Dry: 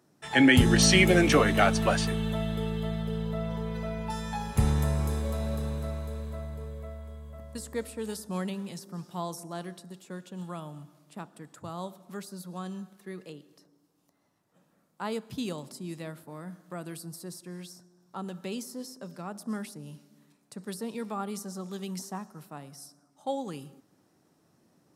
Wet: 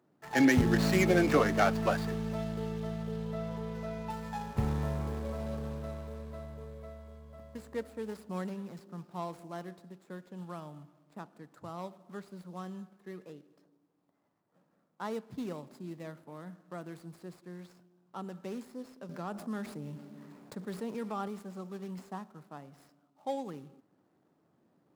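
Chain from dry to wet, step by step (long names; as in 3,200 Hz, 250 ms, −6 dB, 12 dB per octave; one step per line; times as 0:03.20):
running median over 15 samples
low-shelf EQ 110 Hz −8.5 dB
0:19.09–0:21.28: envelope flattener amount 50%
level −2.5 dB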